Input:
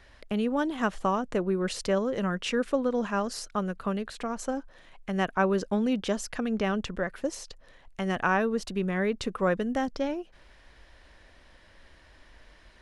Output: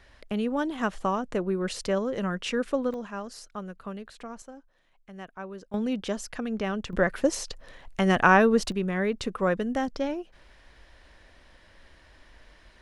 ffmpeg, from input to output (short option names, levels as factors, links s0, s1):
-af "asetnsamples=n=441:p=0,asendcmd='2.94 volume volume -7.5dB;4.42 volume volume -14.5dB;5.74 volume volume -2dB;6.93 volume volume 7dB;8.72 volume volume 0.5dB',volume=0.944"